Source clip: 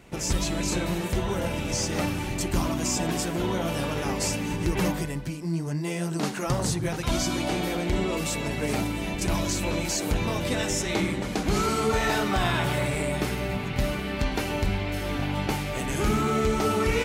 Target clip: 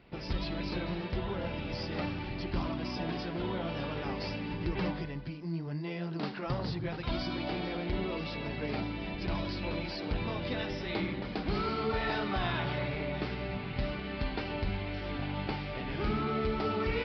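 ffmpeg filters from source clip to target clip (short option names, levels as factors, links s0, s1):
-af "aresample=11025,aresample=44100,volume=0.422"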